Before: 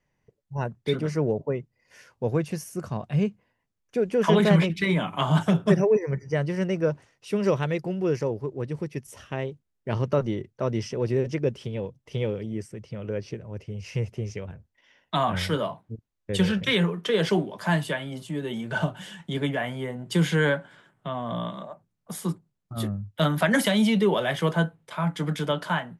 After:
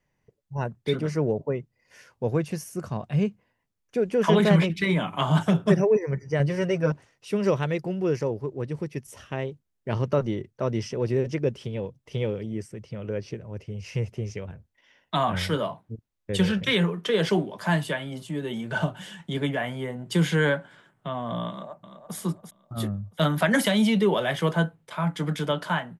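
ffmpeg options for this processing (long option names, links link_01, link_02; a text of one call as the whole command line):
ffmpeg -i in.wav -filter_complex "[0:a]asettb=1/sr,asplit=3[link_01][link_02][link_03];[link_01]atrim=end=6.394[link_04];[link_02]atrim=start=6.39:end=6.92,asetpts=PTS-STARTPTS,afade=type=in:duration=0.004:curve=qsin,afade=type=out:start_time=0.526:duration=0.004:curve=qsin,aecho=1:1:7.4:0.88,atrim=end_sample=23373[link_05];[link_03]atrim=start=6.916[link_06];[link_04][link_05]acrossfade=duration=0.004:curve1=hsin:curve2=qsin[link_07];[link_07][link_06]acrossfade=duration=0.004:curve1=qsin:curve2=hsin,asplit=2[link_08][link_09];[link_09]afade=type=in:start_time=21.49:duration=0.01,afade=type=out:start_time=22.16:duration=0.01,aecho=0:1:340|680|1020|1360:0.354813|0.141925|0.0567701|0.0227081[link_10];[link_08][link_10]amix=inputs=2:normalize=0" out.wav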